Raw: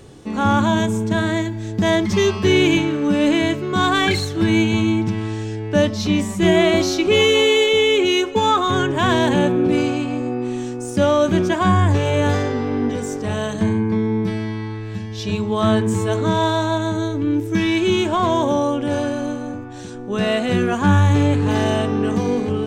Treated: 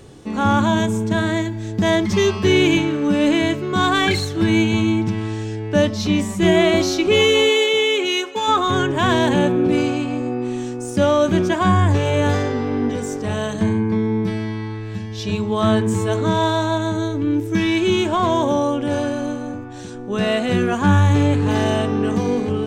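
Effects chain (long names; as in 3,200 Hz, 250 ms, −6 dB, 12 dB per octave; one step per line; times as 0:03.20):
0:07.49–0:08.47: high-pass filter 260 Hz → 1,000 Hz 6 dB per octave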